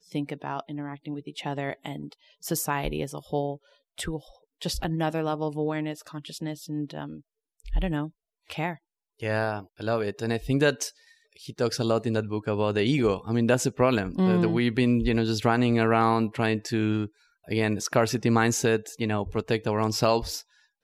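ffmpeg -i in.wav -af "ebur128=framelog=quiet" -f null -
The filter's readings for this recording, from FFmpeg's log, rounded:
Integrated loudness:
  I:         -27.0 LUFS
  Threshold: -37.5 LUFS
Loudness range:
  LRA:         9.0 LU
  Threshold: -47.4 LUFS
  LRA low:   -32.8 LUFS
  LRA high:  -23.8 LUFS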